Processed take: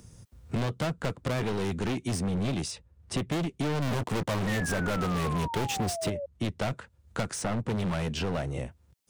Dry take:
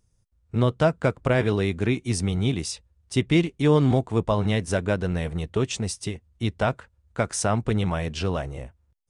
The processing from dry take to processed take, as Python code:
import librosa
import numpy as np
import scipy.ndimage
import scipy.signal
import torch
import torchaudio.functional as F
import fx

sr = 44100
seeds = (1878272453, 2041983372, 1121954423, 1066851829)

y = fx.highpass(x, sr, hz=88.0, slope=6)
y = fx.peak_eq(y, sr, hz=180.0, db=5.0, octaves=2.1)
y = fx.leveller(y, sr, passes=3, at=(3.82, 6.1))
y = np.clip(10.0 ** (24.5 / 20.0) * y, -1.0, 1.0) / 10.0 ** (24.5 / 20.0)
y = fx.spec_paint(y, sr, seeds[0], shape='fall', start_s=4.47, length_s=1.79, low_hz=550.0, high_hz=1900.0, level_db=-34.0)
y = fx.band_squash(y, sr, depth_pct=70)
y = F.gain(torch.from_numpy(y), -3.0).numpy()